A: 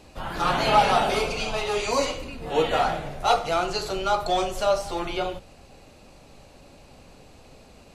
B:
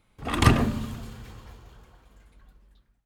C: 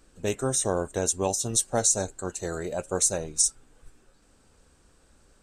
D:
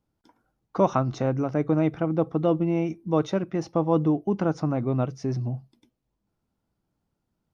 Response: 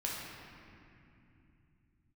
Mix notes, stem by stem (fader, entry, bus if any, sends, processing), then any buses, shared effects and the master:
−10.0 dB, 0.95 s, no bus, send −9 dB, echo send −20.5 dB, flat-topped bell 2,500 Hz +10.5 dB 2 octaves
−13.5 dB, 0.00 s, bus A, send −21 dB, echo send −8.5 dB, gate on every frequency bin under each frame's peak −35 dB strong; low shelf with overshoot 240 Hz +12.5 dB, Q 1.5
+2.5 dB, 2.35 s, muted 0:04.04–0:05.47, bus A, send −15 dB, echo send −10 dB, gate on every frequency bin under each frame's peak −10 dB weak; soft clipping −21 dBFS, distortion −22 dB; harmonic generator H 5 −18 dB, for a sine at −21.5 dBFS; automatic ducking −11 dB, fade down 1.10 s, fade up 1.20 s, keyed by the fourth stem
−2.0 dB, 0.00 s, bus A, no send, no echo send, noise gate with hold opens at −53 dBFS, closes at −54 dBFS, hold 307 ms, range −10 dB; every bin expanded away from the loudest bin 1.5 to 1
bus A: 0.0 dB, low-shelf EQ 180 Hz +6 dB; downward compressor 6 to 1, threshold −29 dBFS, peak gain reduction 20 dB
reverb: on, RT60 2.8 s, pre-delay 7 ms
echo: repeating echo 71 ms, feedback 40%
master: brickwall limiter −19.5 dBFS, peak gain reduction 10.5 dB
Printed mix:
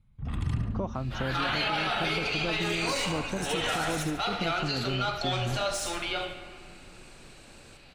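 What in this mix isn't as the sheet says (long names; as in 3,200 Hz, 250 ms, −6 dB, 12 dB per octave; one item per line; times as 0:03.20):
stem B: send off
stem D: missing every bin expanded away from the loudest bin 1.5 to 1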